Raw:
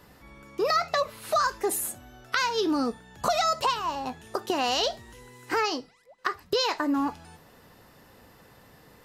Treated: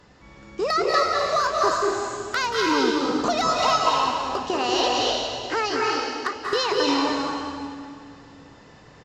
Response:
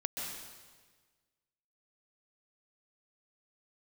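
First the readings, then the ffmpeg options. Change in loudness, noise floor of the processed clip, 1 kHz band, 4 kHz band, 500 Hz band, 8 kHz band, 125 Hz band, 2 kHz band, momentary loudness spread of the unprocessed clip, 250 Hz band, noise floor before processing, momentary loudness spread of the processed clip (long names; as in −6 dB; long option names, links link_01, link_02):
+4.5 dB, −49 dBFS, +5.5 dB, +5.5 dB, +5.5 dB, +2.0 dB, +5.5 dB, +5.0 dB, 9 LU, +4.5 dB, −56 dBFS, 9 LU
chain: -filter_complex "[0:a]aresample=16000,acrusher=bits=6:mode=log:mix=0:aa=0.000001,aresample=44100,asoftclip=type=hard:threshold=-16.5dB[link_01];[1:a]atrim=start_sample=2205,asetrate=29547,aresample=44100[link_02];[link_01][link_02]afir=irnorm=-1:irlink=0"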